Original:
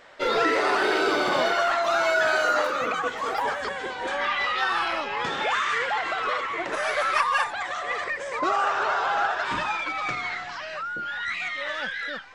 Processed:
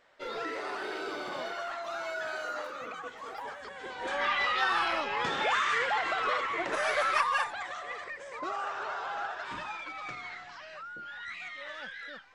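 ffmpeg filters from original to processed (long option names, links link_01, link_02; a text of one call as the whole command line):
ffmpeg -i in.wav -af "volume=-3dB,afade=type=in:start_time=3.71:duration=0.56:silence=0.281838,afade=type=out:start_time=6.94:duration=1.05:silence=0.375837" out.wav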